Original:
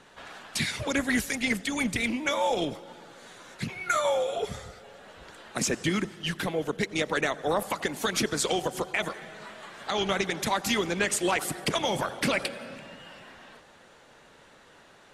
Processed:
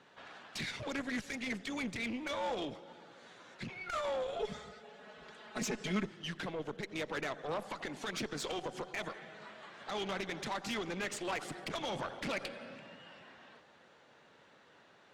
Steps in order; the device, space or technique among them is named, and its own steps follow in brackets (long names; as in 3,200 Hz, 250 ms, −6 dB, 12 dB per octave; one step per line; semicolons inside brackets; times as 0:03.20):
valve radio (band-pass filter 100–5,200 Hz; tube saturation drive 25 dB, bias 0.45; saturating transformer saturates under 210 Hz)
0:04.39–0:06.06: comb filter 4.7 ms, depth 88%
level −5.5 dB